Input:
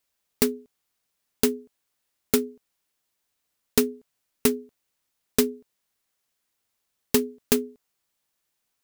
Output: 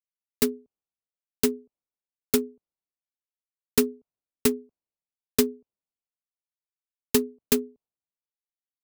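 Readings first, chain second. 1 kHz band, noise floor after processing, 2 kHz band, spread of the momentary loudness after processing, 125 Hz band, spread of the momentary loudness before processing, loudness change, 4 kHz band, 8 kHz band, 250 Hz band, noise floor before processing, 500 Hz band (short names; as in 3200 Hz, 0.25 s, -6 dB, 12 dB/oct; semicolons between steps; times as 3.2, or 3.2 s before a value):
-2.5 dB, under -85 dBFS, -1.5 dB, 13 LU, -2.0 dB, 12 LU, -1.0 dB, -1.0 dB, -1.0 dB, -0.5 dB, -78 dBFS, -1.0 dB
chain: Wiener smoothing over 25 samples; three-band expander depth 70%; gain -4.5 dB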